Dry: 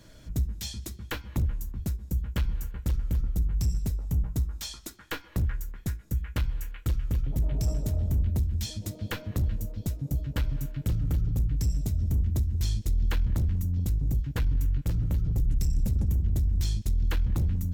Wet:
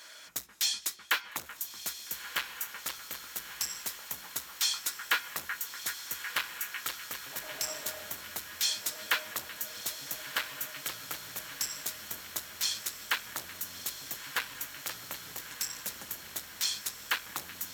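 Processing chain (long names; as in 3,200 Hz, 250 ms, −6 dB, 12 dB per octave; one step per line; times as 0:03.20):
Chebyshev high-pass filter 1,300 Hz, order 2
in parallel at −4 dB: soft clipping −35 dBFS, distortion −11 dB
on the sum: feedback delay with all-pass diffusion 1,291 ms, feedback 74%, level −11 dB
level +6.5 dB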